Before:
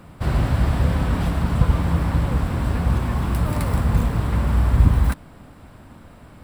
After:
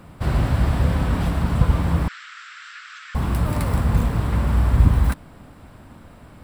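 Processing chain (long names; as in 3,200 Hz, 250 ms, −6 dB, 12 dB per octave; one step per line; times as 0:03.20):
0:02.08–0:03.15: Chebyshev band-pass filter 1,300–7,400 Hz, order 5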